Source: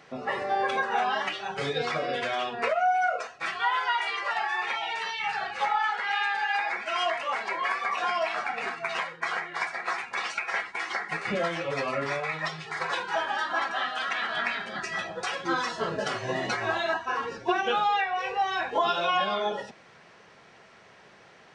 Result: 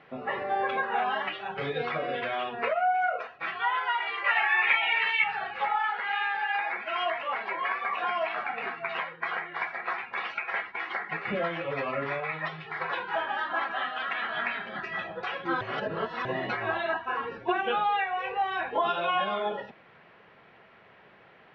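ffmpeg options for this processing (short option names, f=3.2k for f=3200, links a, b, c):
-filter_complex "[0:a]asettb=1/sr,asplit=3[a][b][c];[a]atrim=end=4.244[d];[b]atrim=start=4.24:end=5.24,asetpts=PTS-STARTPTS,afade=t=in:d=0.004:c=qsin,afade=t=out:st=0.996:d=0.004:c=qsin,equalizer=f=2.3k:t=o:w=1:g=13[e];[c]atrim=start=5.236[f];[d][e]acrossfade=d=0.004:c1=hsin:c2=qsin[g];[g][f]acrossfade=d=0.004:c1=qsin:c2=hsin,asplit=3[h][i][j];[h]atrim=end=15.612[k];[i]atrim=start=15.608:end=16.252,asetpts=PTS-STARTPTS,areverse[l];[j]atrim=start=16.248[m];[k][l]acrossfade=d=0.004:c1=hsin:c2=hsin[n];[n][m]acrossfade=d=0.004:c1=hsin:c2=hsin,lowpass=f=3.2k:w=0.5412,lowpass=f=3.2k:w=1.3066,volume=-1.5dB"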